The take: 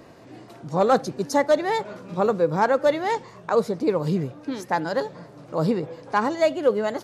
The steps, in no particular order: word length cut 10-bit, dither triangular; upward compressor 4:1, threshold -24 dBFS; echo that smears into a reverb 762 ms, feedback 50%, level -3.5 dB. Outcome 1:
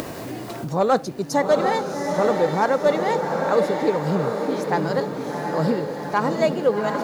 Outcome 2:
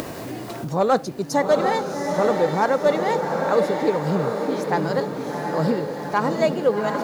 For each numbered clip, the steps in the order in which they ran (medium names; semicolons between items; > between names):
echo that smears into a reverb > word length cut > upward compressor; word length cut > echo that smears into a reverb > upward compressor